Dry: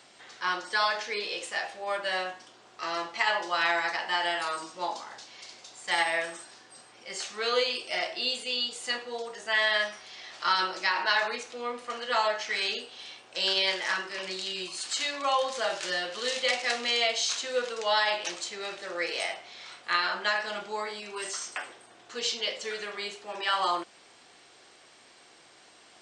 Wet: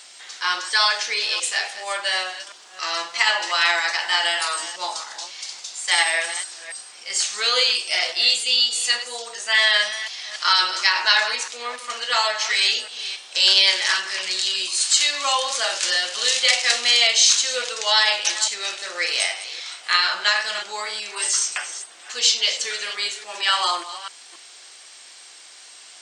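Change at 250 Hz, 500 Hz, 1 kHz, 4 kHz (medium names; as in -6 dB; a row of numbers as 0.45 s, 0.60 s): no reading, 0.0 dB, +4.0 dB, +12.0 dB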